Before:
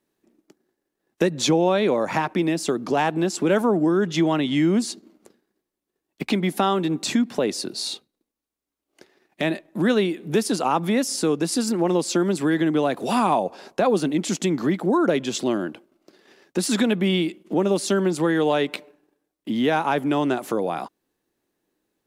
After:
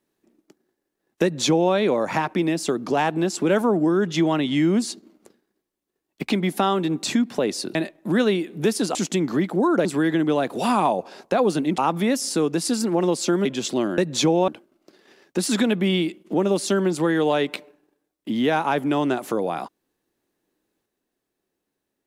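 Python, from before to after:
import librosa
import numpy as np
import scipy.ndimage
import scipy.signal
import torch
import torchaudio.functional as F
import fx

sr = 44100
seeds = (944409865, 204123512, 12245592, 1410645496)

y = fx.edit(x, sr, fx.duplicate(start_s=1.23, length_s=0.5, to_s=15.68),
    fx.cut(start_s=7.75, length_s=1.7),
    fx.swap(start_s=10.65, length_s=1.67, other_s=14.25, other_length_s=0.9), tone=tone)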